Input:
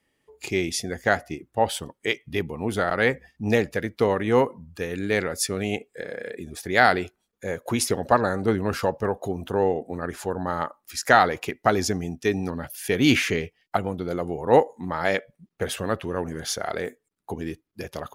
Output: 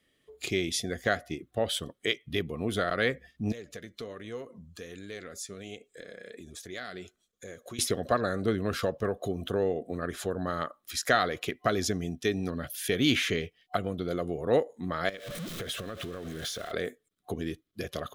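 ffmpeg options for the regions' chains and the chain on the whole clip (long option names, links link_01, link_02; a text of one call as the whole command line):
ffmpeg -i in.wav -filter_complex "[0:a]asettb=1/sr,asplit=3[link_01][link_02][link_03];[link_01]atrim=end=3.524[link_04];[link_02]atrim=start=3.52:end=7.79,asetpts=PTS-STARTPTS,afade=type=in:duration=0.004:curve=qsin,afade=type=out:start_time=4.266:duration=0.004:curve=qsin,equalizer=frequency=6800:width_type=o:width=0.72:gain=9.5,acompressor=threshold=-39dB:ratio=2.5:attack=3.2:release=140:knee=1:detection=peak,flanger=delay=1.8:depth=3.6:regen=70:speed=1.3:shape=sinusoidal[link_05];[link_03]atrim=start=7.786[link_06];[link_04][link_05]acrossfade=duration=0.004:curve1=hsin:curve2=qsin[link_07];[link_07][link_06]acrossfade=duration=0.004:curve1=qsin:curve2=hsin,asettb=1/sr,asplit=3[link_08][link_09][link_10];[link_08]atrim=end=15.094[link_11];[link_09]atrim=start=15.09:end=16.72,asetpts=PTS-STARTPTS,afade=type=in:duration=0.004:curve=qsin,afade=type=out:start_time=1.626:duration=0.004:curve=qsin,aeval=exprs='val(0)+0.5*0.0251*sgn(val(0))':channel_layout=same,acompressor=threshold=-33dB:ratio=10:attack=3.2:release=140:knee=1:detection=peak[link_12];[link_10]atrim=start=16.716[link_13];[link_11][link_12]acrossfade=duration=0.004:curve1=hsin:curve2=qsin[link_14];[link_14][link_13]acrossfade=duration=0.004:curve1=qsin:curve2=hsin,superequalizer=9b=0.282:13b=2,acompressor=threshold=-33dB:ratio=1.5" out.wav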